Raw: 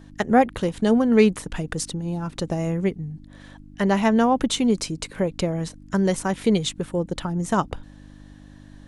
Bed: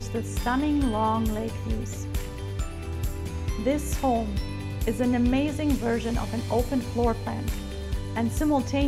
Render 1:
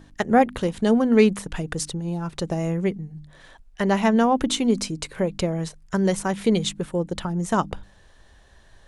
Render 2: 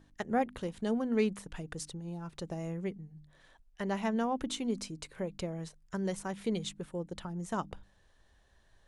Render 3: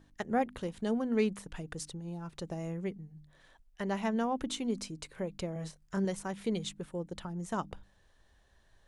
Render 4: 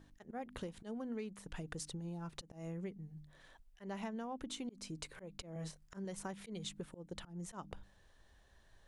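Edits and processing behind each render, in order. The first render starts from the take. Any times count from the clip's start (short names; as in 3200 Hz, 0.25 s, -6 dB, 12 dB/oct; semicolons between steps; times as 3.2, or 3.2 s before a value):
de-hum 50 Hz, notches 6
gain -13 dB
5.53–6.05 doubler 26 ms -3.5 dB
auto swell 0.261 s; compressor 8:1, threshold -40 dBFS, peak gain reduction 16 dB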